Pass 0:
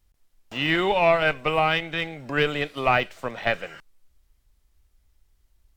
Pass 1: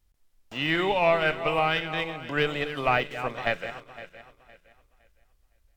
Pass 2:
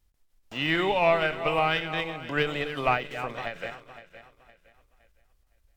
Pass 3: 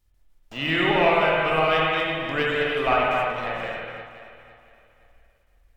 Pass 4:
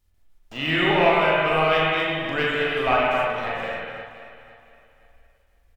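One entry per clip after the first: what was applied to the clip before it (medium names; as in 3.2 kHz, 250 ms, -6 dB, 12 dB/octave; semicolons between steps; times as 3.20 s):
backward echo that repeats 256 ms, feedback 52%, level -11 dB; trim -3 dB
endings held to a fixed fall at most 140 dB/s
reverberation, pre-delay 50 ms, DRR -3.5 dB
doubling 39 ms -5.5 dB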